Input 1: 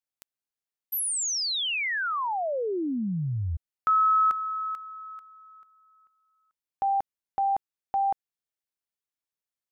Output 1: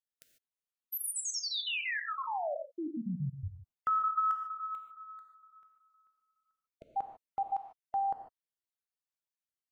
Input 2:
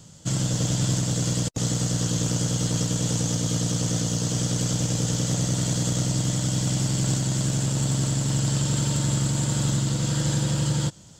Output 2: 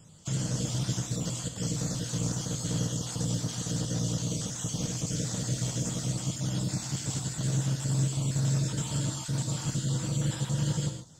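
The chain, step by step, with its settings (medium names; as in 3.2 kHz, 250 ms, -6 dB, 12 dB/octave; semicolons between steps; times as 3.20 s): random holes in the spectrogram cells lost 32%; gated-style reverb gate 170 ms flat, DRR 4.5 dB; trim -6.5 dB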